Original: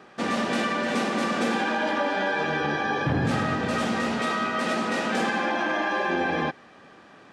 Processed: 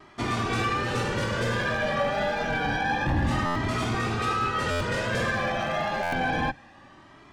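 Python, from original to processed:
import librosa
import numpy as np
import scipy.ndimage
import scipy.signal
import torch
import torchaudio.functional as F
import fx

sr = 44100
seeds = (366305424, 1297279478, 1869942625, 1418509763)

y = fx.octave_divider(x, sr, octaves=1, level_db=-2.0)
y = np.clip(y, -10.0 ** (-20.0 / 20.0), 10.0 ** (-20.0 / 20.0))
y = fx.vibrato(y, sr, rate_hz=1.4, depth_cents=31.0)
y = fx.buffer_glitch(y, sr, at_s=(3.45, 4.7, 6.02), block=512, repeats=8)
y = fx.comb_cascade(y, sr, direction='rising', hz=0.28)
y = y * 10.0 ** (3.5 / 20.0)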